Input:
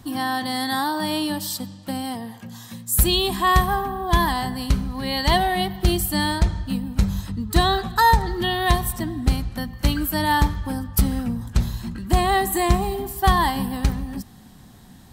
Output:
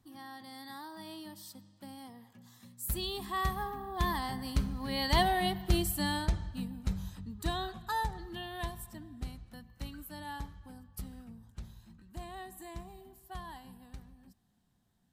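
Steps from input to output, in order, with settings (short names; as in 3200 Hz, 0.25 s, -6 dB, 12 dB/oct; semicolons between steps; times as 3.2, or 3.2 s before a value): Doppler pass-by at 5.3, 11 m/s, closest 10 m; gain -8 dB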